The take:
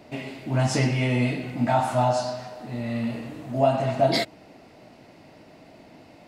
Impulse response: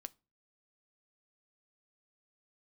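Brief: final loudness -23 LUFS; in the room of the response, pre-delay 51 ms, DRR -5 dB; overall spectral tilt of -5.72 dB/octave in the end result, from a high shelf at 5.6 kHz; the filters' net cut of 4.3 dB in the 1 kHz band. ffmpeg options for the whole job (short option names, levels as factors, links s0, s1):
-filter_complex "[0:a]equalizer=f=1000:t=o:g=-6.5,highshelf=f=5600:g=-4.5,asplit=2[s0][s1];[1:a]atrim=start_sample=2205,adelay=51[s2];[s1][s2]afir=irnorm=-1:irlink=0,volume=3.16[s3];[s0][s3]amix=inputs=2:normalize=0,volume=0.794"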